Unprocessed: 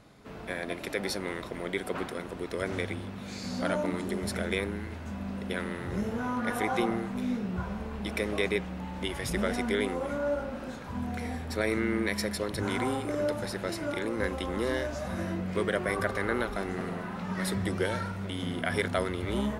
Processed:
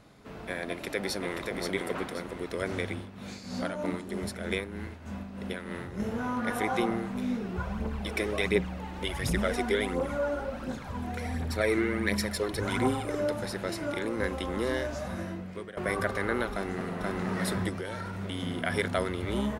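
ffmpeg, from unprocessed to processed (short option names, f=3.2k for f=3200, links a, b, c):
-filter_complex "[0:a]asplit=2[a][b];[b]afade=t=in:st=0.67:d=0.01,afade=t=out:st=1.42:d=0.01,aecho=0:1:530|1060|1590|2120:0.630957|0.189287|0.0567862|0.0170358[c];[a][c]amix=inputs=2:normalize=0,asettb=1/sr,asplit=3[d][e][f];[d]atrim=end=2.964[g];[e]atrim=start=2.96:end=6,asetpts=PTS-STARTPTS,afade=t=in:d=0.004:c=qsin,afade=t=out:st=3.036:d=0.004:c=qsin,tremolo=f=3.2:d=0.59[h];[f]atrim=start=5.996[i];[g][h]acrossfade=d=0.004:c1=hsin:c2=qsin[j];[j][i]acrossfade=d=0.004:c1=qsin:c2=hsin,asplit=3[k][l][m];[k]afade=t=out:st=7.4:d=0.02[n];[l]aphaser=in_gain=1:out_gain=1:delay=3:decay=0.5:speed=1.4:type=triangular,afade=t=in:st=7.4:d=0.02,afade=t=out:st=13.19:d=0.02[o];[m]afade=t=in:st=13.19:d=0.02[p];[n][o][p]amix=inputs=3:normalize=0,asplit=2[q][r];[r]afade=t=in:st=16.52:d=0.01,afade=t=out:st=17.15:d=0.01,aecho=0:1:480|960|1440|1920|2400:0.891251|0.3565|0.1426|0.0570401|0.022816[s];[q][s]amix=inputs=2:normalize=0,asettb=1/sr,asplit=3[t][u][v];[t]atrim=end=17.694[w];[u]atrim=start=17.69:end=18.2,asetpts=PTS-STARTPTS,afade=t=in:d=0.004:c=qsin,afade=t=out:st=0.506:d=0.004:c=qsin,acompressor=threshold=-32dB:ratio=5:attack=3.2:release=140:knee=1:detection=peak[x];[v]atrim=start=18.196[y];[w][x]acrossfade=d=0.004:c1=hsin:c2=qsin[z];[z][y]acrossfade=d=0.004:c1=qsin:c2=hsin,asplit=2[aa][ab];[aa]atrim=end=15.77,asetpts=PTS-STARTPTS,afade=t=out:st=14.99:d=0.78:silence=0.105925[ac];[ab]atrim=start=15.77,asetpts=PTS-STARTPTS,afade=t=in:d=0.004:c=hsin:silence=0.105925[ad];[ac][ad]concat=n=2:v=0:a=1"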